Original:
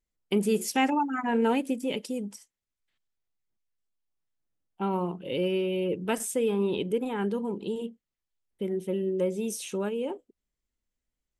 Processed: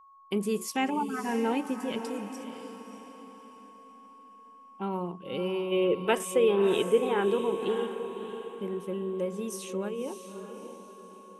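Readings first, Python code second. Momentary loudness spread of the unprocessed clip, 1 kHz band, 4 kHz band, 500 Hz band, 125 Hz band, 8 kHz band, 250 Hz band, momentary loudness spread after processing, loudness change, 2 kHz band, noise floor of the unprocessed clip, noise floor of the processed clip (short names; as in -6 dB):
9 LU, -1.0 dB, 0.0 dB, +1.5 dB, -3.5 dB, -3.5 dB, -2.5 dB, 19 LU, -0.5 dB, -0.5 dB, under -85 dBFS, -53 dBFS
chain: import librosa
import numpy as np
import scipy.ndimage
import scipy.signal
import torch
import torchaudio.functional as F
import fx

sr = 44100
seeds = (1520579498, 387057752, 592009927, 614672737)

y = x + 10.0 ** (-49.0 / 20.0) * np.sin(2.0 * np.pi * 1100.0 * np.arange(len(x)) / sr)
y = fx.spec_box(y, sr, start_s=5.72, length_s=2.15, low_hz=330.0, high_hz=3900.0, gain_db=8)
y = fx.echo_diffused(y, sr, ms=605, feedback_pct=42, wet_db=-9)
y = y * 10.0 ** (-4.0 / 20.0)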